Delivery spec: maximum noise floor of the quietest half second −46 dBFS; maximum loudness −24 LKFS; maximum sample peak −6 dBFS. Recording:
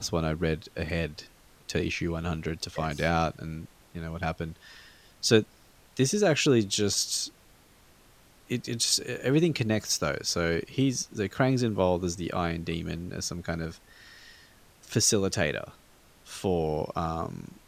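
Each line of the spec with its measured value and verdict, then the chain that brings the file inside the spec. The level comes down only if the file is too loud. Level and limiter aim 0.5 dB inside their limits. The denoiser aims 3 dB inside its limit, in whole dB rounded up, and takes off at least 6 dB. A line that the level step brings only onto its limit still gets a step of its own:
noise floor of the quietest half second −58 dBFS: in spec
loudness −28.0 LKFS: in spec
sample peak −6.5 dBFS: in spec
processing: no processing needed

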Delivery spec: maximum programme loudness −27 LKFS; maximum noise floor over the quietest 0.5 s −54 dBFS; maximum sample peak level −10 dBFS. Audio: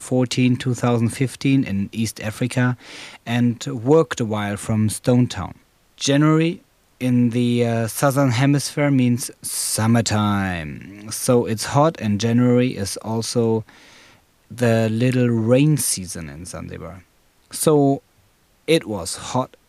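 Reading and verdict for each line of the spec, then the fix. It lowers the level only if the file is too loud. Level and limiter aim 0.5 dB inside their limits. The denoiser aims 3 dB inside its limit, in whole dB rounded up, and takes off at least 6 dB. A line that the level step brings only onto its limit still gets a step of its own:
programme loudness −19.5 LKFS: out of spec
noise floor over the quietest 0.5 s −58 dBFS: in spec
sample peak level −2.5 dBFS: out of spec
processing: level −8 dB

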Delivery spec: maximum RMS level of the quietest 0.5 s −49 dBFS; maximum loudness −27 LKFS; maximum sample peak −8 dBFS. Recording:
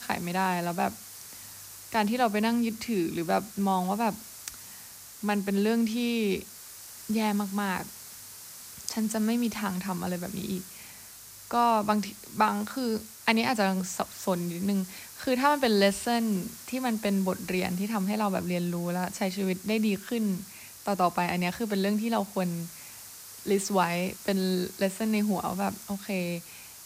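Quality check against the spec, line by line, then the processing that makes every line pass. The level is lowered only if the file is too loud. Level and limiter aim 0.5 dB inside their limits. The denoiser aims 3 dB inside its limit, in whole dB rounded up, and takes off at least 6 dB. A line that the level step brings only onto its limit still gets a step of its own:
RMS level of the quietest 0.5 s −47 dBFS: out of spec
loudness −28.5 LKFS: in spec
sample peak −9.5 dBFS: in spec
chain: broadband denoise 6 dB, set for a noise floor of −47 dBFS

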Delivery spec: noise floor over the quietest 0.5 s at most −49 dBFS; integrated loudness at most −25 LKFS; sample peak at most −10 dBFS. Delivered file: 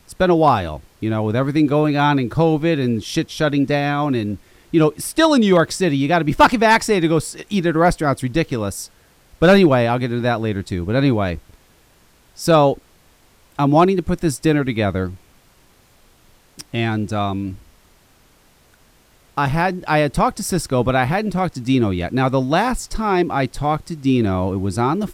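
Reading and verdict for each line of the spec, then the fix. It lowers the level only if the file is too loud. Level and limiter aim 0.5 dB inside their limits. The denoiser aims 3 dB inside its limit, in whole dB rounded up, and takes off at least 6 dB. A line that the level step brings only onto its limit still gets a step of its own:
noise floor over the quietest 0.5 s −54 dBFS: in spec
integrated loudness −18.0 LKFS: out of spec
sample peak −2.5 dBFS: out of spec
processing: level −7.5 dB
brickwall limiter −10.5 dBFS

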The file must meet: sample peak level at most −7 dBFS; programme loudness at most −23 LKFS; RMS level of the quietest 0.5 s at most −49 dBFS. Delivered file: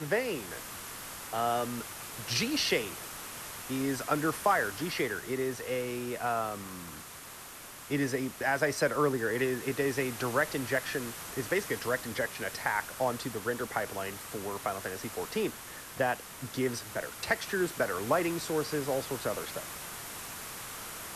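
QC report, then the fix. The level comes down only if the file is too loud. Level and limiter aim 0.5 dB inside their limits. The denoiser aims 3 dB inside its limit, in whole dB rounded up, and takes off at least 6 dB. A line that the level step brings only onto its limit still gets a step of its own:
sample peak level −13.5 dBFS: in spec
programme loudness −32.5 LKFS: in spec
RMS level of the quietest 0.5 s −47 dBFS: out of spec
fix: broadband denoise 6 dB, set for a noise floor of −47 dBFS

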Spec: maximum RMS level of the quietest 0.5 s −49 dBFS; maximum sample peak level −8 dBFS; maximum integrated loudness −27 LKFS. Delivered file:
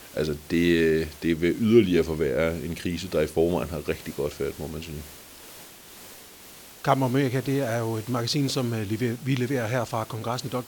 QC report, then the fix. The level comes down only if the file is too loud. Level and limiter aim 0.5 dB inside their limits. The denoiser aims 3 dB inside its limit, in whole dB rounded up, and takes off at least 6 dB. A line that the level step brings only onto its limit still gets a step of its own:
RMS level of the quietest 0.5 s −47 dBFS: out of spec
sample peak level −6.0 dBFS: out of spec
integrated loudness −25.5 LKFS: out of spec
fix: broadband denoise 6 dB, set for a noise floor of −47 dBFS
level −2 dB
brickwall limiter −8.5 dBFS

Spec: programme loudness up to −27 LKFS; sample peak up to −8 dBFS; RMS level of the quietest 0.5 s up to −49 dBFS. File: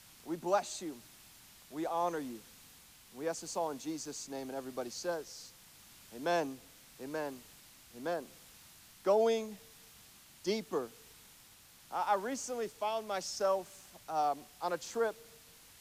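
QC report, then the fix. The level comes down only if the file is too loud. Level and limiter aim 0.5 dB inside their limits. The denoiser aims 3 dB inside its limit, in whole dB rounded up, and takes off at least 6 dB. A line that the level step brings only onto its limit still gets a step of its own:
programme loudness −36.5 LKFS: in spec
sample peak −18.0 dBFS: in spec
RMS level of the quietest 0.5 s −59 dBFS: in spec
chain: no processing needed

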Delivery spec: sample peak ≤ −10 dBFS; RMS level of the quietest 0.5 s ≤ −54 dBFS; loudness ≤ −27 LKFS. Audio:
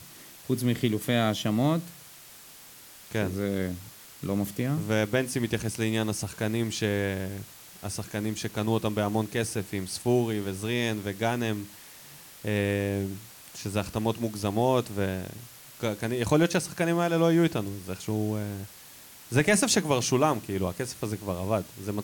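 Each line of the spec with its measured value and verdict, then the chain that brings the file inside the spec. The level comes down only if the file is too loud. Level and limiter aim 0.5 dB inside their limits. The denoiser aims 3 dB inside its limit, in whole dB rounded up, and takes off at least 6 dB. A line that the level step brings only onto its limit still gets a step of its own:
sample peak −10.5 dBFS: in spec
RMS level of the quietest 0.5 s −49 dBFS: out of spec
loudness −28.0 LKFS: in spec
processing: broadband denoise 8 dB, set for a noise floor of −49 dBFS

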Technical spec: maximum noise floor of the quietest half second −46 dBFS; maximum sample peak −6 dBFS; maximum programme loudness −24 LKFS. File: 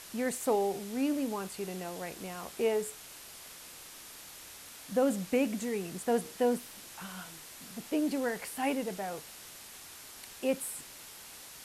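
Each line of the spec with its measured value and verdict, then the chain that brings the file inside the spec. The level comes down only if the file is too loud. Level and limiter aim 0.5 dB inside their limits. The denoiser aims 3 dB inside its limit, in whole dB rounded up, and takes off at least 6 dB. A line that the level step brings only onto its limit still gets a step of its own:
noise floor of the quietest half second −49 dBFS: in spec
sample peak −18.0 dBFS: in spec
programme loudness −33.5 LKFS: in spec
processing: no processing needed

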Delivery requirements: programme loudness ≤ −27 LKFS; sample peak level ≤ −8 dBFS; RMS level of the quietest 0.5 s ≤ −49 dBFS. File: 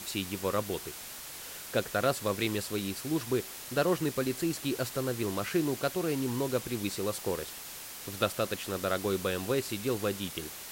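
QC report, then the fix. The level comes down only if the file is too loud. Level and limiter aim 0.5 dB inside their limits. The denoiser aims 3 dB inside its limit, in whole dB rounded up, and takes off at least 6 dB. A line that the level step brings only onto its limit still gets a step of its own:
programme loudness −32.5 LKFS: in spec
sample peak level −13.0 dBFS: in spec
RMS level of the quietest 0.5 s −44 dBFS: out of spec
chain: broadband denoise 8 dB, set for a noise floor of −44 dBFS

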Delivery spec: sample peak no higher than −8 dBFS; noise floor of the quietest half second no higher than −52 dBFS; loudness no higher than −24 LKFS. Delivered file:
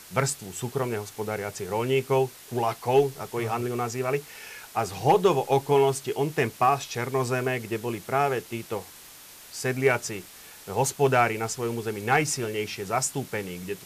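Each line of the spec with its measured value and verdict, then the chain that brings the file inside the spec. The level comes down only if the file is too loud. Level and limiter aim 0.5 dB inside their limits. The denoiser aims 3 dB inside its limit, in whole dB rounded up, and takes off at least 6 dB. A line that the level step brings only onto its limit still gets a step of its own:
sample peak −9.5 dBFS: in spec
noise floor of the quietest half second −47 dBFS: out of spec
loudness −26.5 LKFS: in spec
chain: broadband denoise 8 dB, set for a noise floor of −47 dBFS

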